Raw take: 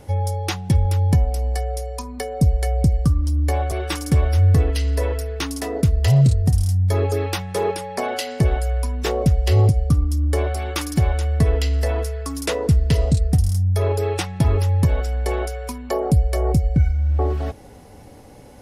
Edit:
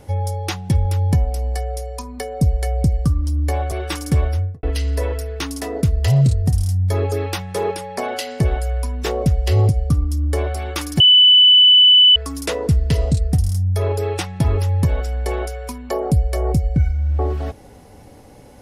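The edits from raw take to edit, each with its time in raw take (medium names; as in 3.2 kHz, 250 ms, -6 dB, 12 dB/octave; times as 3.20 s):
4.21–4.63 s: studio fade out
11.00–12.16 s: bleep 2.99 kHz -6.5 dBFS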